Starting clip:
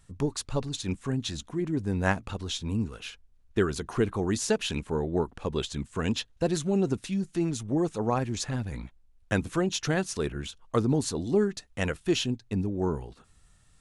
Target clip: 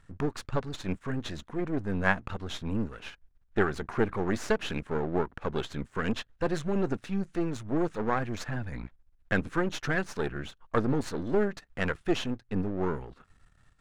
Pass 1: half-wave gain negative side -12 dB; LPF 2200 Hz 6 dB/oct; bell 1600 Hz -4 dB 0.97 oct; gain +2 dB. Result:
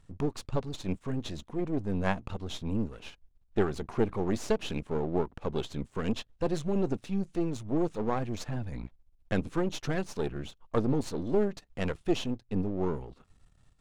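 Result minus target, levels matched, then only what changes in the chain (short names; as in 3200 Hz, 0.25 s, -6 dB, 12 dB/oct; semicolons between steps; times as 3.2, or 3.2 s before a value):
2000 Hz band -8.0 dB
change: bell 1600 Hz +6.5 dB 0.97 oct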